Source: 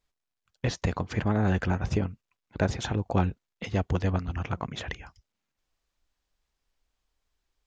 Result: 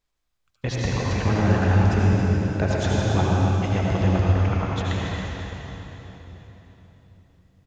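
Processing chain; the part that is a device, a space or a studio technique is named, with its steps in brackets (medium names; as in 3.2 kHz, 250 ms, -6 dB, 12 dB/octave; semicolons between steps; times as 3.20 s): cave (delay 275 ms -9.5 dB; reverberation RT60 4.0 s, pre-delay 69 ms, DRR -5 dB)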